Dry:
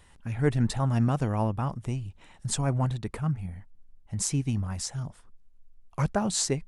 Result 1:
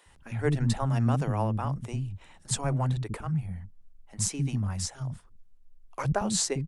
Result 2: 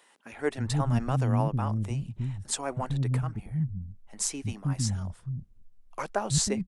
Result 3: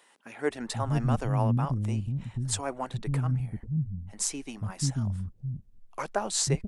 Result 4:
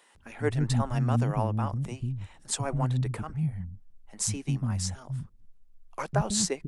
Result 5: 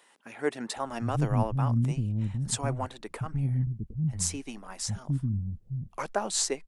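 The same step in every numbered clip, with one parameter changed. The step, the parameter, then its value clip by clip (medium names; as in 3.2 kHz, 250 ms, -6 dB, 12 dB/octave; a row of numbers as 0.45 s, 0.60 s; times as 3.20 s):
bands offset in time, time: 60 ms, 320 ms, 490 ms, 150 ms, 760 ms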